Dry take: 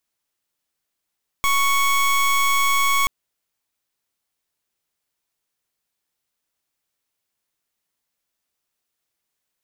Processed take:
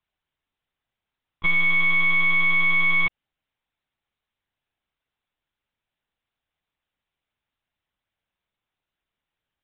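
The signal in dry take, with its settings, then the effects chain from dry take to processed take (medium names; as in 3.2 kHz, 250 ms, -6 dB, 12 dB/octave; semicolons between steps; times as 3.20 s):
pulse 1.11 kHz, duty 23% -18 dBFS 1.63 s
monotone LPC vocoder at 8 kHz 170 Hz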